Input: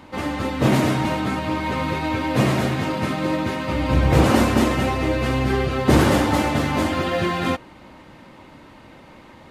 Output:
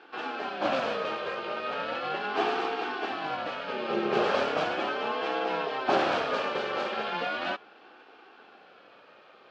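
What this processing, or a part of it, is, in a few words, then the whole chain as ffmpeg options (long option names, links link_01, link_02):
voice changer toy: -af "aeval=exprs='val(0)*sin(2*PI*430*n/s+430*0.35/0.37*sin(2*PI*0.37*n/s))':channel_layout=same,highpass=500,equalizer=frequency=640:width_type=q:width=4:gain=-6,equalizer=frequency=960:width_type=q:width=4:gain=-8,equalizer=frequency=2000:width_type=q:width=4:gain=-9,equalizer=frequency=3800:width_type=q:width=4:gain=-4,lowpass=frequency=4300:width=0.5412,lowpass=frequency=4300:width=1.3066"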